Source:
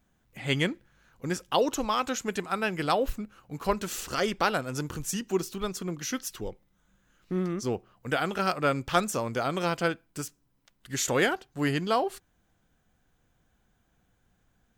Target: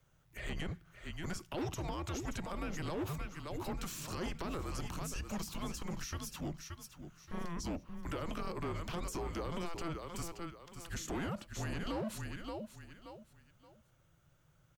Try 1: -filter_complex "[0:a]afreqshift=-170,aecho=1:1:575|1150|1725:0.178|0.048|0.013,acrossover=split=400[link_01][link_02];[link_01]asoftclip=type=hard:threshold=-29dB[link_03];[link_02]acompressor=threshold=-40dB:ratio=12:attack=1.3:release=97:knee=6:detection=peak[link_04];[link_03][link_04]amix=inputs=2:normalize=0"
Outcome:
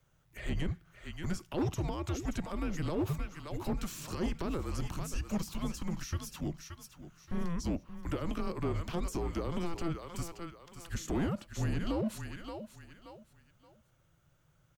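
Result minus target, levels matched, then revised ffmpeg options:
hard clipping: distortion −6 dB
-filter_complex "[0:a]afreqshift=-170,aecho=1:1:575|1150|1725:0.178|0.048|0.013,acrossover=split=400[link_01][link_02];[link_01]asoftclip=type=hard:threshold=-38dB[link_03];[link_02]acompressor=threshold=-40dB:ratio=12:attack=1.3:release=97:knee=6:detection=peak[link_04];[link_03][link_04]amix=inputs=2:normalize=0"

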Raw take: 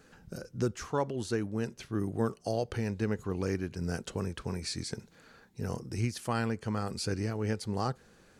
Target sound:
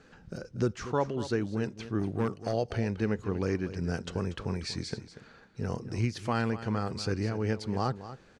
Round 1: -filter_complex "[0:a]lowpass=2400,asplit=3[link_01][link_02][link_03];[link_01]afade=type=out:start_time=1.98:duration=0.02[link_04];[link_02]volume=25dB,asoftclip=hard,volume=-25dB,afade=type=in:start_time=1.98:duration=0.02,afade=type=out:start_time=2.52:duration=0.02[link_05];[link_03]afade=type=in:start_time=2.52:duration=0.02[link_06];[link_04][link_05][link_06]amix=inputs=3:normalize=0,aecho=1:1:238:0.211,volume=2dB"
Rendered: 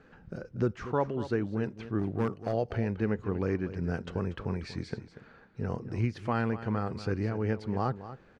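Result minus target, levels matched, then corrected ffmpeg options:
4,000 Hz band −8.5 dB
-filter_complex "[0:a]lowpass=5300,asplit=3[link_01][link_02][link_03];[link_01]afade=type=out:start_time=1.98:duration=0.02[link_04];[link_02]volume=25dB,asoftclip=hard,volume=-25dB,afade=type=in:start_time=1.98:duration=0.02,afade=type=out:start_time=2.52:duration=0.02[link_05];[link_03]afade=type=in:start_time=2.52:duration=0.02[link_06];[link_04][link_05][link_06]amix=inputs=3:normalize=0,aecho=1:1:238:0.211,volume=2dB"

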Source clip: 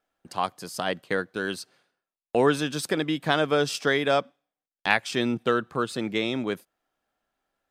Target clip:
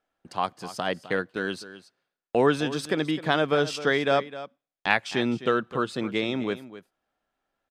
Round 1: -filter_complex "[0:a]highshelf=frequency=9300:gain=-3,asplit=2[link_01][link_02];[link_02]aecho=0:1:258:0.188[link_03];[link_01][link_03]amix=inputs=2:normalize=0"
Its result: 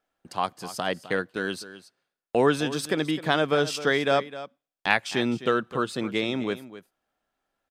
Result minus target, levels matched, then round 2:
8,000 Hz band +4.0 dB
-filter_complex "[0:a]highshelf=frequency=9300:gain=-14.5,asplit=2[link_01][link_02];[link_02]aecho=0:1:258:0.188[link_03];[link_01][link_03]amix=inputs=2:normalize=0"

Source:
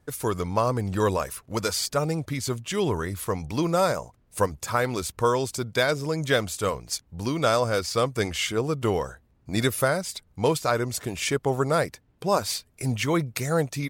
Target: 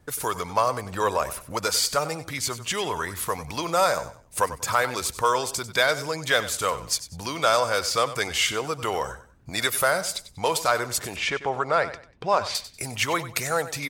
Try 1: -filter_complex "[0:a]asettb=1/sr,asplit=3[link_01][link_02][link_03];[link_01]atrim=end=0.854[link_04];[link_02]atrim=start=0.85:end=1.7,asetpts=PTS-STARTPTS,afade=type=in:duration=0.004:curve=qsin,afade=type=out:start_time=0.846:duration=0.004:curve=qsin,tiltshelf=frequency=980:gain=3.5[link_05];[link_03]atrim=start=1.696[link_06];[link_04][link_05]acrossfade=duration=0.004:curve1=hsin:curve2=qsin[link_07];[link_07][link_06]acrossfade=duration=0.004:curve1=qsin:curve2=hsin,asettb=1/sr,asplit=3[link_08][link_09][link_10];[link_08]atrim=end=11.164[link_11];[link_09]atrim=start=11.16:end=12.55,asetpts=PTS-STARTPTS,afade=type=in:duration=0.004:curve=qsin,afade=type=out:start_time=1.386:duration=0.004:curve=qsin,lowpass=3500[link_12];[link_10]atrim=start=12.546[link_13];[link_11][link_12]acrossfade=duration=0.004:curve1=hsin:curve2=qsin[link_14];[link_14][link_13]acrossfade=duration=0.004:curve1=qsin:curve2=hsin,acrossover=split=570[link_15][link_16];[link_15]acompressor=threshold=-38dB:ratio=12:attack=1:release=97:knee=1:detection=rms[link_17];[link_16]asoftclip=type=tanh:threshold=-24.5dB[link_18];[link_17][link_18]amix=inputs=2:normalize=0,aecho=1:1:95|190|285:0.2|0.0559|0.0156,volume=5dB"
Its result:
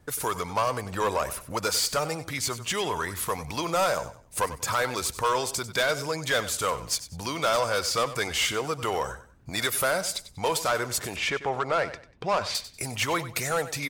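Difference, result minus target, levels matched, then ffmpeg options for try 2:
soft clipping: distortion +13 dB
-filter_complex "[0:a]asettb=1/sr,asplit=3[link_01][link_02][link_03];[link_01]atrim=end=0.854[link_04];[link_02]atrim=start=0.85:end=1.7,asetpts=PTS-STARTPTS,afade=type=in:duration=0.004:curve=qsin,afade=type=out:start_time=0.846:duration=0.004:curve=qsin,tiltshelf=frequency=980:gain=3.5[link_05];[link_03]atrim=start=1.696[link_06];[link_04][link_05]acrossfade=duration=0.004:curve1=hsin:curve2=qsin[link_07];[link_07][link_06]acrossfade=duration=0.004:curve1=qsin:curve2=hsin,asettb=1/sr,asplit=3[link_08][link_09][link_10];[link_08]atrim=end=11.164[link_11];[link_09]atrim=start=11.16:end=12.55,asetpts=PTS-STARTPTS,afade=type=in:duration=0.004:curve=qsin,afade=type=out:start_time=1.386:duration=0.004:curve=qsin,lowpass=3500[link_12];[link_10]atrim=start=12.546[link_13];[link_11][link_12]acrossfade=duration=0.004:curve1=hsin:curve2=qsin[link_14];[link_14][link_13]acrossfade=duration=0.004:curve1=qsin:curve2=hsin,acrossover=split=570[link_15][link_16];[link_15]acompressor=threshold=-38dB:ratio=12:attack=1:release=97:knee=1:detection=rms[link_17];[link_16]asoftclip=type=tanh:threshold=-13.5dB[link_18];[link_17][link_18]amix=inputs=2:normalize=0,aecho=1:1:95|190|285:0.2|0.0559|0.0156,volume=5dB"

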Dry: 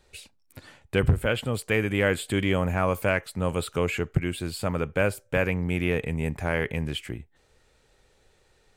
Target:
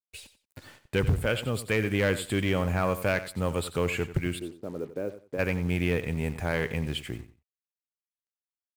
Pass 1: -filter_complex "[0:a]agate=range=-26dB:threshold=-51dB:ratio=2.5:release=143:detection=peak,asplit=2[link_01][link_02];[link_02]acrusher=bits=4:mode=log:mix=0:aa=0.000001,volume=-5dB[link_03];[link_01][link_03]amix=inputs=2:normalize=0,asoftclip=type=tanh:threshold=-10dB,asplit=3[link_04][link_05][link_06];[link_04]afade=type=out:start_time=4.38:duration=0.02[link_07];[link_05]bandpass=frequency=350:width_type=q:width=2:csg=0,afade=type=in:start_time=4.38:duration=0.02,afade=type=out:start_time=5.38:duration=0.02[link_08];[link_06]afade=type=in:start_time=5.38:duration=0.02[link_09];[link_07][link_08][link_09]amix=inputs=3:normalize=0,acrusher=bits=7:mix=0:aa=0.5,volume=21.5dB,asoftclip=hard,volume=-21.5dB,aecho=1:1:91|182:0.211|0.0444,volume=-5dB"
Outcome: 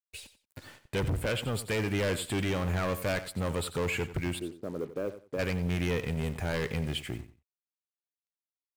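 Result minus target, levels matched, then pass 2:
gain into a clipping stage and back: distortion +23 dB
-filter_complex "[0:a]agate=range=-26dB:threshold=-51dB:ratio=2.5:release=143:detection=peak,asplit=2[link_01][link_02];[link_02]acrusher=bits=4:mode=log:mix=0:aa=0.000001,volume=-5dB[link_03];[link_01][link_03]amix=inputs=2:normalize=0,asoftclip=type=tanh:threshold=-10dB,asplit=3[link_04][link_05][link_06];[link_04]afade=type=out:start_time=4.38:duration=0.02[link_07];[link_05]bandpass=frequency=350:width_type=q:width=2:csg=0,afade=type=in:start_time=4.38:duration=0.02,afade=type=out:start_time=5.38:duration=0.02[link_08];[link_06]afade=type=in:start_time=5.38:duration=0.02[link_09];[link_07][link_08][link_09]amix=inputs=3:normalize=0,acrusher=bits=7:mix=0:aa=0.5,volume=12.5dB,asoftclip=hard,volume=-12.5dB,aecho=1:1:91|182:0.211|0.0444,volume=-5dB"

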